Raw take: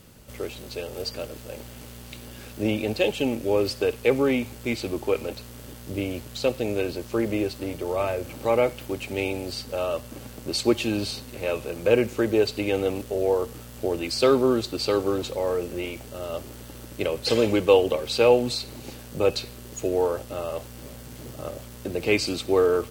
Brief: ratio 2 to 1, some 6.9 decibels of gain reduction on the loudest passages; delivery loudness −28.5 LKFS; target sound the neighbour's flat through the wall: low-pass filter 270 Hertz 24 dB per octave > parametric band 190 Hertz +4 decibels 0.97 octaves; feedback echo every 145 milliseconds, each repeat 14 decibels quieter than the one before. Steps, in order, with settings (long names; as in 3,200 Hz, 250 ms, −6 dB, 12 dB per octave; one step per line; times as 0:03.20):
downward compressor 2 to 1, threshold −25 dBFS
low-pass filter 270 Hz 24 dB per octave
parametric band 190 Hz +4 dB 0.97 octaves
repeating echo 145 ms, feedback 20%, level −14 dB
level +8.5 dB